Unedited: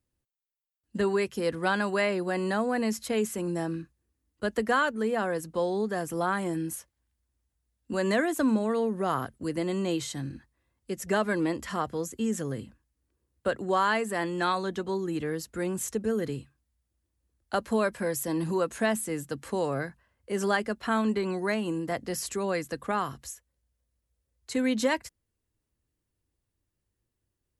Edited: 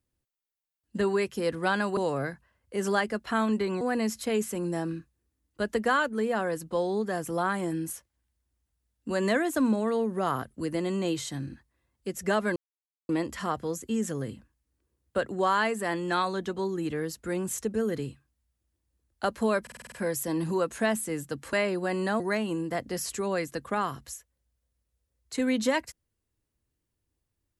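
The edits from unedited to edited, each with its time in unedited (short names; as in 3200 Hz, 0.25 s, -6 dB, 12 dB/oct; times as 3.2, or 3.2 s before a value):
1.97–2.64 swap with 19.53–21.37
11.39 insert silence 0.53 s
17.92 stutter 0.05 s, 7 plays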